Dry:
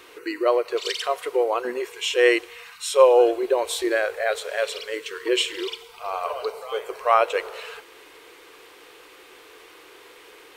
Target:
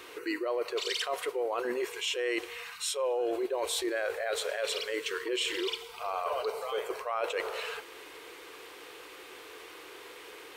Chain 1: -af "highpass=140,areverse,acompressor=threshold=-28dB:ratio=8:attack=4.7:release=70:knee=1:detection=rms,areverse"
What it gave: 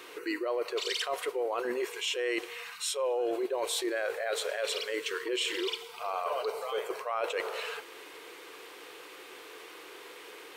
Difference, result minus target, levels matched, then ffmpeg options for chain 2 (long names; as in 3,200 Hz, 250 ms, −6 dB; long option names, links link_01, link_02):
125 Hz band −3.5 dB
-af "highpass=35,areverse,acompressor=threshold=-28dB:ratio=8:attack=4.7:release=70:knee=1:detection=rms,areverse"